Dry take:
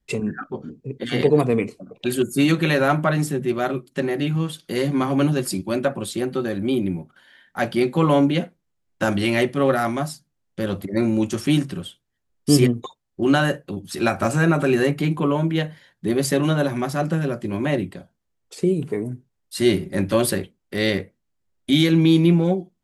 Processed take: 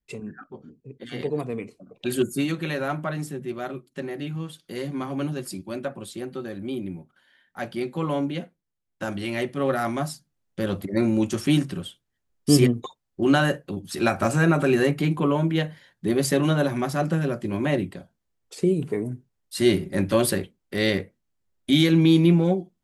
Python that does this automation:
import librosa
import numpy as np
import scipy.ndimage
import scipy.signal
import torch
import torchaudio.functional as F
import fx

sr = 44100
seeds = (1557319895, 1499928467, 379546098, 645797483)

y = fx.gain(x, sr, db=fx.line((1.64, -11.0), (2.26, -1.0), (2.47, -9.0), (9.24, -9.0), (10.1, -1.5)))